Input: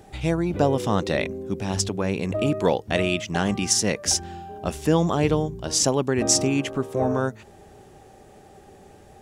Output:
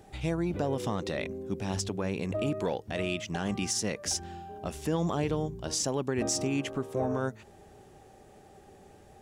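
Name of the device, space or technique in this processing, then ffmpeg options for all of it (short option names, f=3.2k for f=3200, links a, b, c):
soft clipper into limiter: -af "asoftclip=type=tanh:threshold=-7dB,alimiter=limit=-15dB:level=0:latency=1:release=99,volume=-5.5dB"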